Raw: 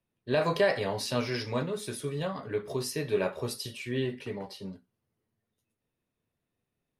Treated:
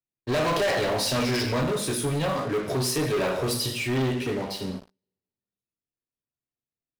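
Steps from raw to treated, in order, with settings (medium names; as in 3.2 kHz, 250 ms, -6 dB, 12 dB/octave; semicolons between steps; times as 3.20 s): two-slope reverb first 0.6 s, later 2.1 s, from -25 dB, DRR 3.5 dB; waveshaping leveller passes 5; trim -8 dB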